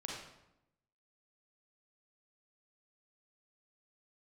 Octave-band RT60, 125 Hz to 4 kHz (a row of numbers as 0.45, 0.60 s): 1.1, 1.1, 0.90, 0.85, 0.75, 0.65 s